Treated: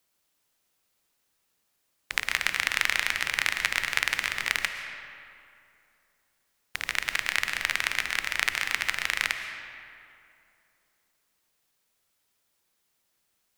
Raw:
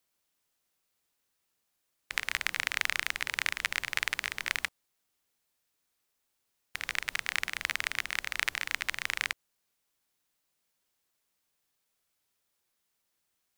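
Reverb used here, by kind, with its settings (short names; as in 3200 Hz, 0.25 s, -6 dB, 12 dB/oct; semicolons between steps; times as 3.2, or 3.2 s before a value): digital reverb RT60 2.6 s, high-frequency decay 0.6×, pre-delay 85 ms, DRR 7 dB; gain +4.5 dB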